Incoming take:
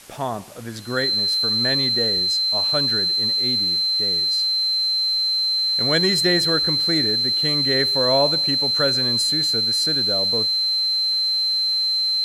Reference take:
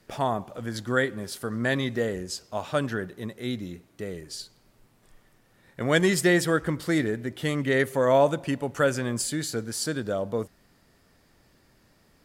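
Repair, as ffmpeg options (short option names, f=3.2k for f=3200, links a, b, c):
-af "bandreject=f=4.1k:w=30,afwtdn=0.0063"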